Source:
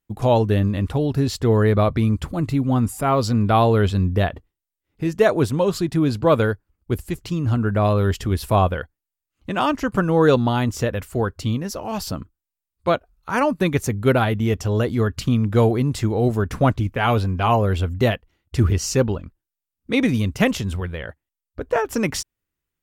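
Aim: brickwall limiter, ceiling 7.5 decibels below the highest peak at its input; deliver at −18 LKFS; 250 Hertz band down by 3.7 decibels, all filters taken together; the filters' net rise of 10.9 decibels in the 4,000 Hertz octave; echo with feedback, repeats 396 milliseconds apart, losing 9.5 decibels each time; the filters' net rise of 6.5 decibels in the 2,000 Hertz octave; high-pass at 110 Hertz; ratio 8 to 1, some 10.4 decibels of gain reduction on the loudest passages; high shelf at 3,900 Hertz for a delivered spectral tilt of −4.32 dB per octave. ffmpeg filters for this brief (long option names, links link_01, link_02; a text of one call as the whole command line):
ffmpeg -i in.wav -af "highpass=110,equalizer=frequency=250:width_type=o:gain=-4.5,equalizer=frequency=2000:width_type=o:gain=5,highshelf=frequency=3900:gain=5.5,equalizer=frequency=4000:width_type=o:gain=9,acompressor=threshold=-21dB:ratio=8,alimiter=limit=-16dB:level=0:latency=1,aecho=1:1:396|792|1188|1584:0.335|0.111|0.0365|0.012,volume=9.5dB" out.wav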